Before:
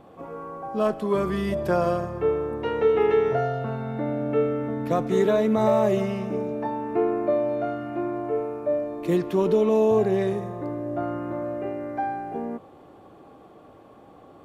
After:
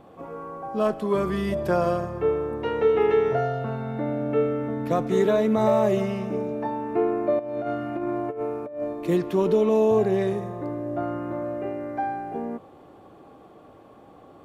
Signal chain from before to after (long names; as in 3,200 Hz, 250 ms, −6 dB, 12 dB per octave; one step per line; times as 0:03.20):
0:07.39–0:08.93: compressor whose output falls as the input rises −28 dBFS, ratio −0.5